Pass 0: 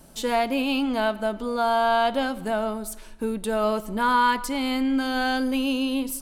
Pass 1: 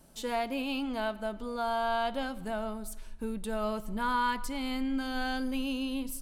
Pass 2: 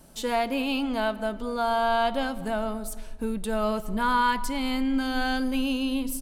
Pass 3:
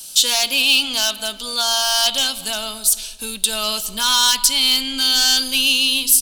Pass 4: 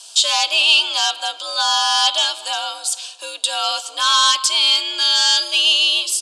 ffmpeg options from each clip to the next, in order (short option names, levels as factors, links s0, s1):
-af "asubboost=boost=3.5:cutoff=170,volume=0.376"
-filter_complex "[0:a]asplit=2[s0][s1];[s1]adelay=226,lowpass=f=990:p=1,volume=0.141,asplit=2[s2][s3];[s3]adelay=226,lowpass=f=990:p=1,volume=0.49,asplit=2[s4][s5];[s5]adelay=226,lowpass=f=990:p=1,volume=0.49,asplit=2[s6][s7];[s7]adelay=226,lowpass=f=990:p=1,volume=0.49[s8];[s0][s2][s4][s6][s8]amix=inputs=5:normalize=0,volume=2"
-filter_complex "[0:a]equalizer=f=2100:t=o:w=2.4:g=14.5,acrossover=split=190[s0][s1];[s1]asoftclip=type=hard:threshold=0.282[s2];[s0][s2]amix=inputs=2:normalize=0,aexciter=amount=8.5:drive=9.9:freq=3100,volume=0.447"
-af "highpass=f=420:w=0.5412,highpass=f=420:w=1.3066,equalizer=f=900:t=q:w=4:g=3,equalizer=f=1800:t=q:w=4:g=-8,equalizer=f=4000:t=q:w=4:g=-4,equalizer=f=5800:t=q:w=4:g=-7,lowpass=f=7300:w=0.5412,lowpass=f=7300:w=1.3066,afreqshift=85,volume=1.5" -ar 48000 -c:a libvorbis -b:a 192k